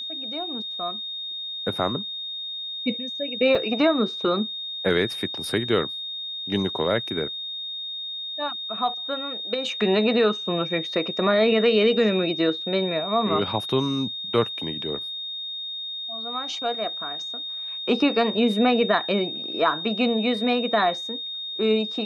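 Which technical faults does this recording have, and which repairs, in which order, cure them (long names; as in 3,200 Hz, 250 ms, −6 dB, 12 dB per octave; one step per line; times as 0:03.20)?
whistle 3,700 Hz −30 dBFS
0:03.55: drop-out 3.9 ms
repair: notch filter 3,700 Hz, Q 30
repair the gap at 0:03.55, 3.9 ms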